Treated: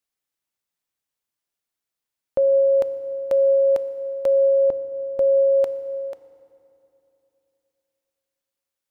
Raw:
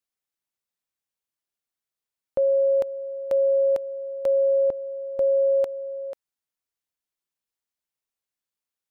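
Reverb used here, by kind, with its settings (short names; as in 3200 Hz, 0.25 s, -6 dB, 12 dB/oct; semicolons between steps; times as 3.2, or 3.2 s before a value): FDN reverb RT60 3 s, low-frequency decay 1.2×, high-frequency decay 0.7×, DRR 12 dB; gain +3 dB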